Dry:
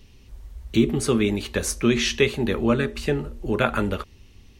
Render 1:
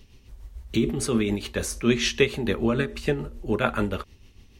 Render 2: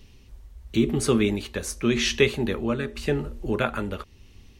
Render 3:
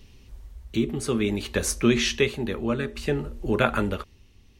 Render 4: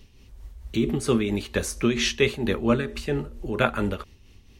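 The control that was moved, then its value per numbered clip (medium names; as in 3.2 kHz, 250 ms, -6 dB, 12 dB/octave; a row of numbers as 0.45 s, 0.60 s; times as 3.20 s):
tremolo, rate: 6.8 Hz, 0.91 Hz, 0.57 Hz, 4.4 Hz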